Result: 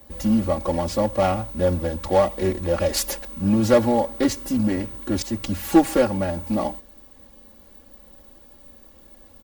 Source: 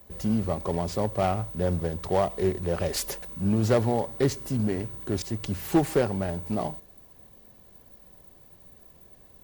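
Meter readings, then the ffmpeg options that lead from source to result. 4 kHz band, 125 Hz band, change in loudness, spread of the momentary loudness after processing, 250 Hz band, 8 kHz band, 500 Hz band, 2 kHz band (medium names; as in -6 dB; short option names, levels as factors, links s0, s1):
+6.0 dB, +0.5 dB, +5.0 dB, 9 LU, +6.5 dB, +6.0 dB, +5.5 dB, +5.5 dB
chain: -af "aecho=1:1:3.6:0.98,volume=1.41"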